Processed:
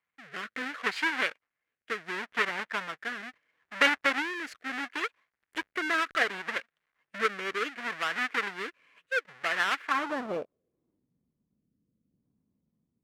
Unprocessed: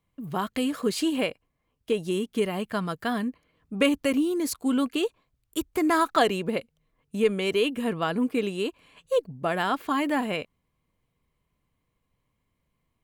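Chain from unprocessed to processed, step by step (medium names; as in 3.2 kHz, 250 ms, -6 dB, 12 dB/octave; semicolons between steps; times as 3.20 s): square wave that keeps the level; rotary cabinet horn 0.7 Hz; Chebyshev shaper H 3 -21 dB, 5 -30 dB, 7 -27 dB, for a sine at -5 dBFS; band-pass sweep 1.8 kHz -> 220 Hz, 9.81–11.12 s; trim +8.5 dB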